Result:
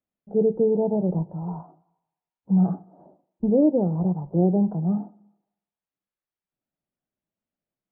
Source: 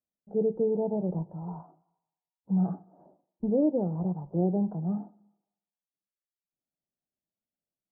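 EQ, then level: air absorption 420 m; +7.0 dB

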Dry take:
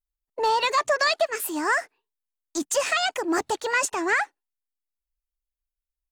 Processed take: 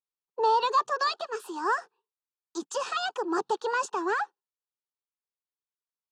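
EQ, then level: BPF 230–3900 Hz; fixed phaser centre 420 Hz, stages 8; 0.0 dB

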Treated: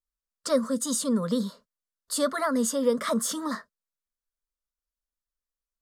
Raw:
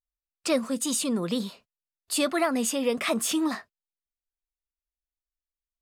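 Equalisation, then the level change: high shelf 9700 Hz -7 dB; fixed phaser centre 510 Hz, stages 8; +3.0 dB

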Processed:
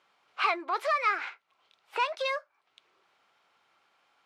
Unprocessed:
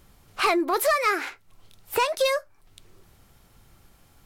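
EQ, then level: Bessel high-pass 1100 Hz, order 2; LPF 2700 Hz 12 dB/oct; bell 1800 Hz -5 dB 0.28 oct; 0.0 dB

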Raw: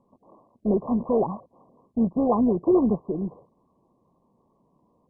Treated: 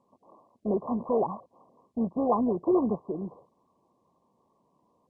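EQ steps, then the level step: air absorption 61 m; tilt +3 dB/oct; bell 87 Hz +4 dB 0.67 oct; 0.0 dB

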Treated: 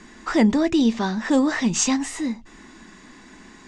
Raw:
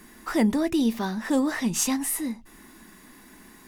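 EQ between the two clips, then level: elliptic low-pass 7400 Hz, stop band 70 dB; +5.5 dB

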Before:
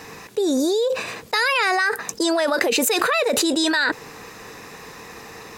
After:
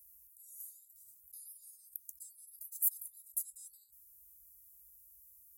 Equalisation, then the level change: HPF 86 Hz 12 dB/oct; inverse Chebyshev band-stop 230–2700 Hz, stop band 80 dB; -2.0 dB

